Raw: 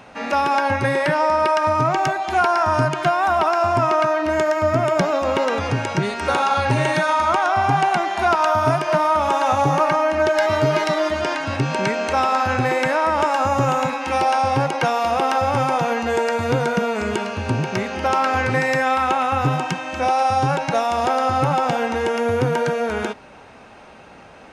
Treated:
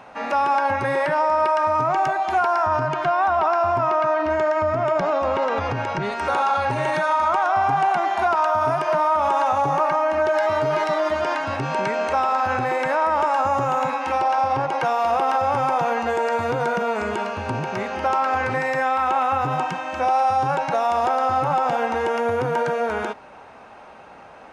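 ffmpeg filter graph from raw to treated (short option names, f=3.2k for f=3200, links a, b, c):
-filter_complex "[0:a]asettb=1/sr,asplit=3[a][b][c];[a]atrim=end=2.664[d];[b]atrim=start=2.66:end=6.12,asetpts=PTS-STARTPTS,afade=t=in:d=0.004:c=qsin,afade=t=out:st=3.456:d=0.004:c=qsin,lowpass=5.9k,lowshelf=f=71:g=11[e];[c]atrim=start=6.116[f];[d][e]acrossfade=d=0.004:c1=hsin:c2=qsin[g];[g][f]acrossfade=d=0.004:c1=qsin:c2=hsin,asettb=1/sr,asplit=3[h][i][j];[h]atrim=end=14.124[k];[i]atrim=start=14.12:end=14.71,asetpts=PTS-STARTPTS,afade=t=in:d=0.004:c=qsin,afade=t=out:st=0.586:d=0.004:c=qsin,lowpass=9.7k,tremolo=f=240:d=0.4,adynamicsmooth=sensitivity=4:basefreq=6.8k[l];[j]atrim=start=14.706[m];[k][l]acrossfade=d=0.004:c1=hsin:c2=qsin[n];[n][m]acrossfade=d=0.004:c1=qsin:c2=hsin,alimiter=limit=-13.5dB:level=0:latency=1:release=38,equalizer=f=910:w=0.62:g=9,volume=-6.5dB"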